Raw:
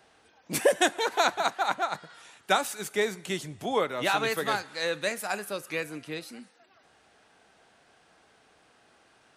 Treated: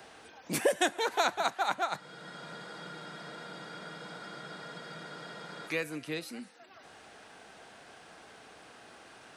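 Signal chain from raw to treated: spectral freeze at 2.02, 3.66 s; three-band squash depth 40%

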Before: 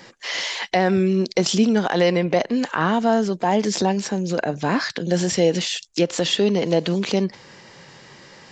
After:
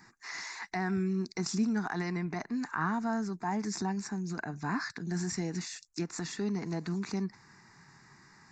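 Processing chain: fixed phaser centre 1300 Hz, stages 4; gain -9 dB

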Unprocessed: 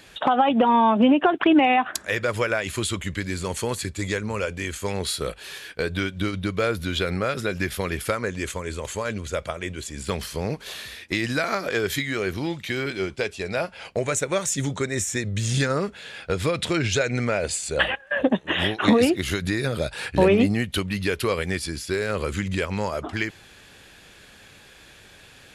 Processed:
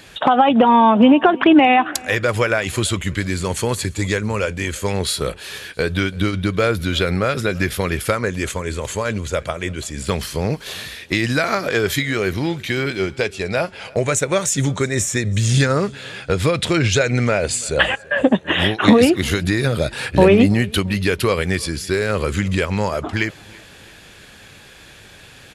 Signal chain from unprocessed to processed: bell 120 Hz +3 dB 1.1 oct; on a send: feedback echo 0.335 s, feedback 42%, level -24 dB; on the sum: gain +5.5 dB

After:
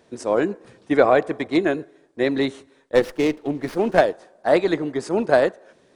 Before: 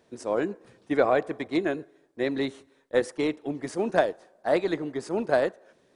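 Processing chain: downsampling 22050 Hz; 2.95–4.01 running maximum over 5 samples; gain +6.5 dB

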